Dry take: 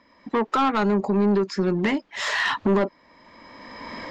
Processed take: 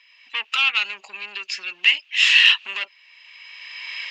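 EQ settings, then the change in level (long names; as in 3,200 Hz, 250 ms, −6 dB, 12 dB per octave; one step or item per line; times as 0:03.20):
high-pass with resonance 2,700 Hz, resonance Q 11
+4.0 dB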